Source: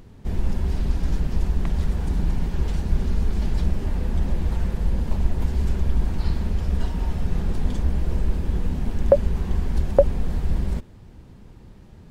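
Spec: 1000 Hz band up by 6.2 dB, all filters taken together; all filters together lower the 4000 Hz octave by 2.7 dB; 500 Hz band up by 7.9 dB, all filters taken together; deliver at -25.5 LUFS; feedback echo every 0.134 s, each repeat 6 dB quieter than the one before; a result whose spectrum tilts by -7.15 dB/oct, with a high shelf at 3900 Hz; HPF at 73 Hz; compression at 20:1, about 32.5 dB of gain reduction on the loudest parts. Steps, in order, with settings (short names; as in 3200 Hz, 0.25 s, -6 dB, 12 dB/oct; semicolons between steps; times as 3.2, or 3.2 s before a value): HPF 73 Hz; bell 500 Hz +7.5 dB; bell 1000 Hz +5 dB; high shelf 3900 Hz +5.5 dB; bell 4000 Hz -7.5 dB; compressor 20:1, threshold -36 dBFS; feedback echo 0.134 s, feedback 50%, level -6 dB; gain +15 dB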